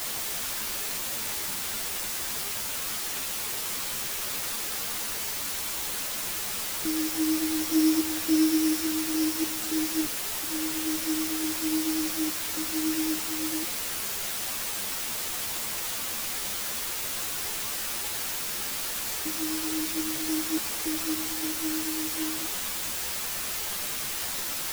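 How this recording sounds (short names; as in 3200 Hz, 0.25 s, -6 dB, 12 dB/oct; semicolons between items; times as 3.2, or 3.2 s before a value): a buzz of ramps at a fixed pitch in blocks of 8 samples; random-step tremolo, depth 95%; a quantiser's noise floor 6-bit, dither triangular; a shimmering, thickened sound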